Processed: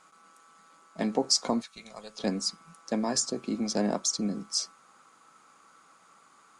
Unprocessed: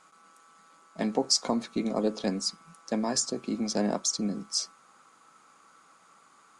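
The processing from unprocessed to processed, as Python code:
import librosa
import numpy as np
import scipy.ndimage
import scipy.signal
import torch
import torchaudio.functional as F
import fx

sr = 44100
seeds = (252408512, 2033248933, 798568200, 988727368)

y = fx.tone_stack(x, sr, knobs='10-0-10', at=(1.6, 2.18), fade=0.02)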